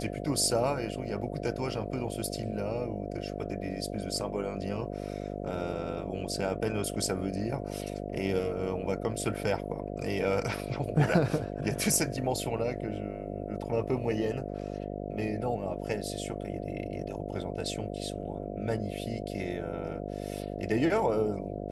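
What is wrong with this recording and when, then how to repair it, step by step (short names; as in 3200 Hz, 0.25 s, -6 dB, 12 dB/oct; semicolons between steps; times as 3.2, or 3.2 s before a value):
buzz 50 Hz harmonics 14 -37 dBFS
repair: de-hum 50 Hz, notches 14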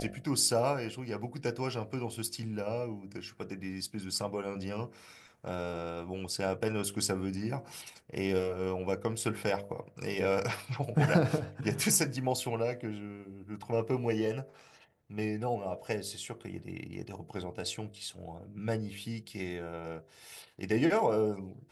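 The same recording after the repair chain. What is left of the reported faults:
none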